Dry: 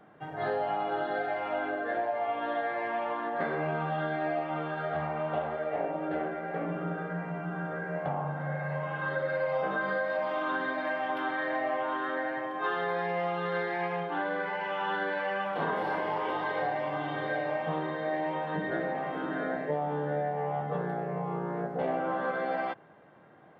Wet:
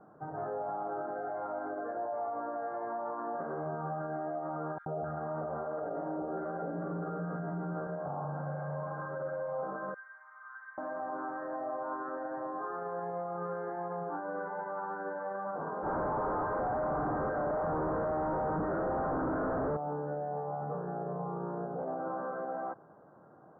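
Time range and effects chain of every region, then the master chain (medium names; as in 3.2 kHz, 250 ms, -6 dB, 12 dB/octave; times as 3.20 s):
4.78–7.87 s: three bands offset in time highs, lows, mids 80/260 ms, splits 870/3800 Hz + level flattener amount 70%
9.94–10.78 s: inverse Chebyshev high-pass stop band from 400 Hz, stop band 70 dB + hard clipper -30.5 dBFS
15.82–19.77 s: treble shelf 2.3 kHz +9.5 dB + Schmitt trigger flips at -38.5 dBFS
whole clip: peak limiter -28.5 dBFS; elliptic low-pass 1.4 kHz, stop band 50 dB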